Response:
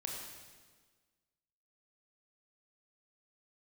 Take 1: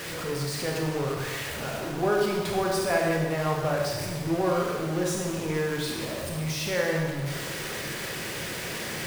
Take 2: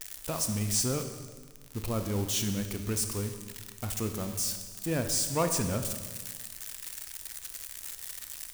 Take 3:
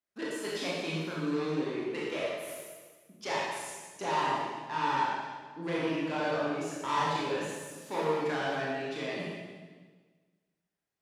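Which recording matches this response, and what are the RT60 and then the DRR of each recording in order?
1; 1.5, 1.5, 1.5 seconds; −1.0, 7.0, −6.5 decibels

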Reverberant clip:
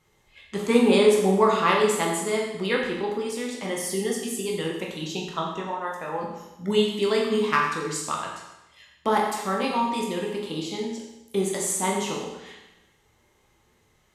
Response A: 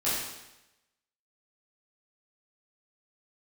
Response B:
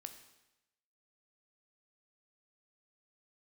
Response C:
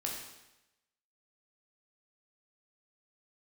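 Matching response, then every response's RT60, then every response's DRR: C; 0.95, 0.95, 0.95 seconds; −11.0, 7.0, −2.0 decibels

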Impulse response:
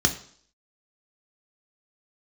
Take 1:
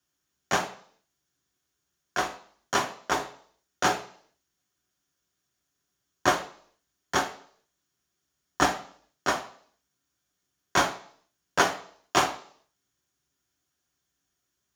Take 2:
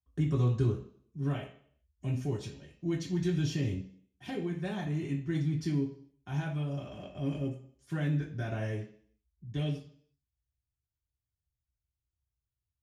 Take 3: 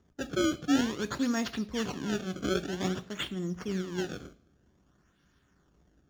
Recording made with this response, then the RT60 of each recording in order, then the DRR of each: 1; 0.55, 0.55, 0.55 seconds; 4.0, −4.0, 10.0 decibels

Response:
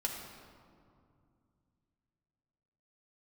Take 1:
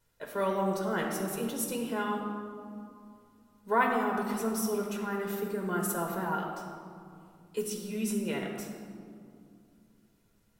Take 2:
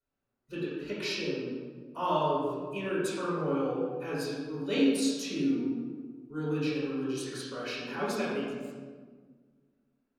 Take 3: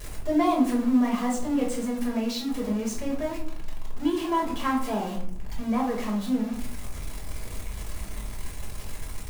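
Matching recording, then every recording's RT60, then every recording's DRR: 1; 2.4, 1.6, 0.60 seconds; −0.5, −7.5, −3.5 decibels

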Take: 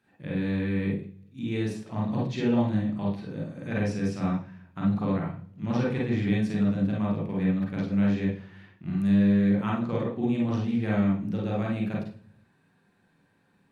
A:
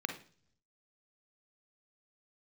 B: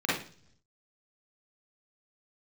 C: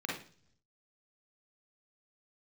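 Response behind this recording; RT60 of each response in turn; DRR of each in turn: C; non-exponential decay, 0.50 s, non-exponential decay; 5.5, −8.5, −3.5 decibels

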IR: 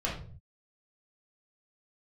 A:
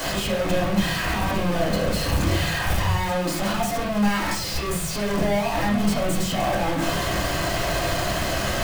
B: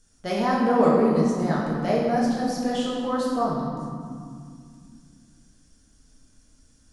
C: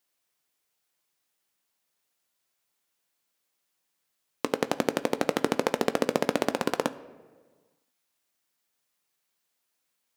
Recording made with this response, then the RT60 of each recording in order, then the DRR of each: A; 0.45, 2.3, 1.5 seconds; −5.5, −6.0, 11.0 decibels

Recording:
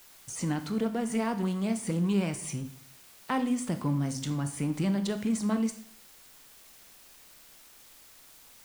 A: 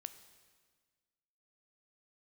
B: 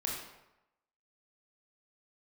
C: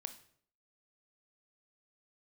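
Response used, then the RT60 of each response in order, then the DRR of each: C; 1.6, 0.90, 0.60 seconds; 10.5, −2.5, 9.0 decibels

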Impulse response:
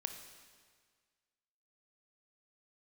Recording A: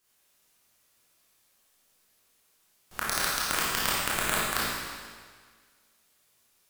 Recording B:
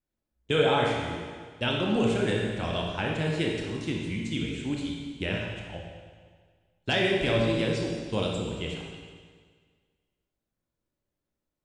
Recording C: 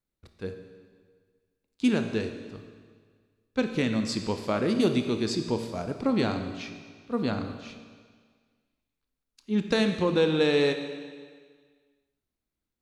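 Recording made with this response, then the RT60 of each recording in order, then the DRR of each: C; 1.7, 1.7, 1.7 seconds; −8.0, −1.5, 6.0 decibels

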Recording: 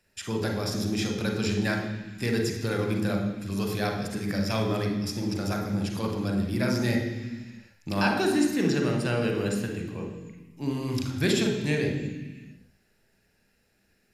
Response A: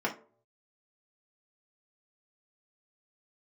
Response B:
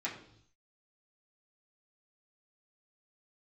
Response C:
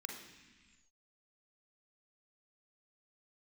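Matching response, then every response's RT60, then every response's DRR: C; non-exponential decay, 0.65 s, 1.4 s; −3.0, −7.5, 1.5 decibels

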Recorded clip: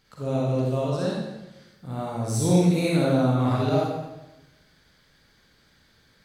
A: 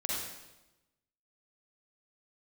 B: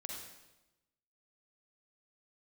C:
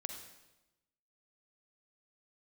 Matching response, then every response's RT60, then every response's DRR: A; 1.0, 1.0, 1.0 seconds; −5.0, −1.0, 4.5 decibels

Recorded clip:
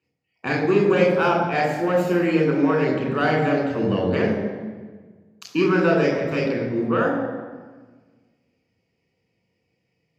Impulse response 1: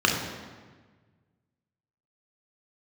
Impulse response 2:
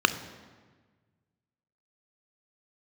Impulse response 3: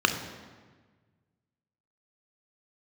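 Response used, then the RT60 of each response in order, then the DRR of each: 1; 1.4, 1.4, 1.4 seconds; −0.5, 10.5, 5.5 decibels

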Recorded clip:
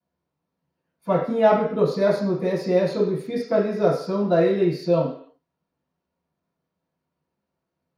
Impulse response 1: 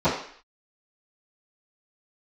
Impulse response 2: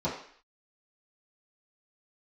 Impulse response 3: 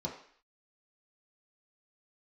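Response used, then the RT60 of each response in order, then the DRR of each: 1; 0.55, 0.55, 0.55 seconds; −20.5, −11.0, −3.5 decibels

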